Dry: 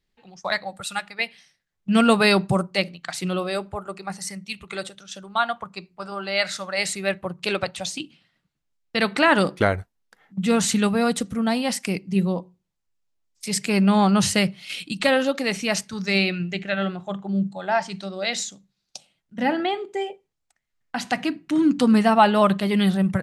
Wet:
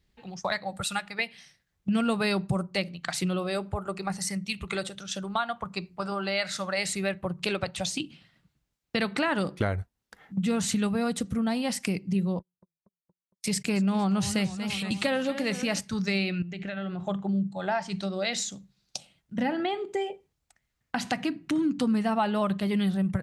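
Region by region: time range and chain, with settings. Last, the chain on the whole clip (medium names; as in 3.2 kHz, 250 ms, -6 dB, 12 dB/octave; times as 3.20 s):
12.39–15.80 s: gate -36 dBFS, range -37 dB + modulated delay 232 ms, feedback 59%, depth 166 cents, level -15 dB
16.42–17.07 s: compression, threshold -36 dBFS + treble shelf 8.9 kHz -9.5 dB
whole clip: high-pass 44 Hz; bass shelf 130 Hz +12 dB; compression 3:1, threshold -32 dBFS; trim +3.5 dB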